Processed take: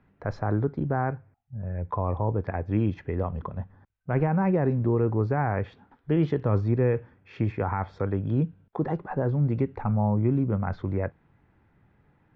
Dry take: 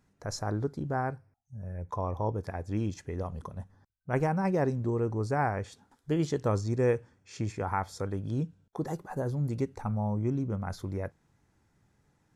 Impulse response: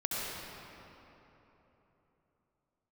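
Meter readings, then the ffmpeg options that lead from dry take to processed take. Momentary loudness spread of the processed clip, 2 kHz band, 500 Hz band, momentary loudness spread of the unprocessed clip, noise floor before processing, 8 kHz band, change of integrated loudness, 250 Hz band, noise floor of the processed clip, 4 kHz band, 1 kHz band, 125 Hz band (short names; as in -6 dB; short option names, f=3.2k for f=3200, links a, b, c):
11 LU, +2.0 dB, +3.5 dB, 14 LU, -72 dBFS, under -20 dB, +5.0 dB, +5.5 dB, -65 dBFS, n/a, +2.5 dB, +6.5 dB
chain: -filter_complex "[0:a]lowpass=f=2.8k:w=0.5412,lowpass=f=2.8k:w=1.3066,acrossover=split=200[a][b];[b]alimiter=level_in=0.5dB:limit=-24dB:level=0:latency=1:release=32,volume=-0.5dB[c];[a][c]amix=inputs=2:normalize=0,volume=6.5dB"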